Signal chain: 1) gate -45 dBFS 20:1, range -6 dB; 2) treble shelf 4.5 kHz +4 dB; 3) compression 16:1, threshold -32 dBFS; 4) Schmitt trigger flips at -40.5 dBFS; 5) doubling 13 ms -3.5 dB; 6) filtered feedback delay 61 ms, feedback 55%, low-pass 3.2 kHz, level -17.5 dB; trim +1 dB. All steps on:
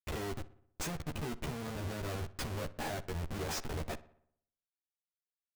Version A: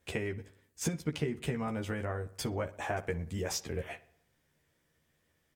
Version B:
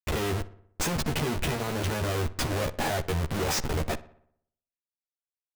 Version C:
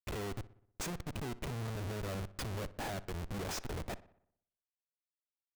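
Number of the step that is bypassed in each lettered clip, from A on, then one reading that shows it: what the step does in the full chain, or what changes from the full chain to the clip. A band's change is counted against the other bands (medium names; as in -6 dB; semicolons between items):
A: 4, crest factor change +7.5 dB; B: 3, mean gain reduction 6.5 dB; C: 5, loudness change -1.0 LU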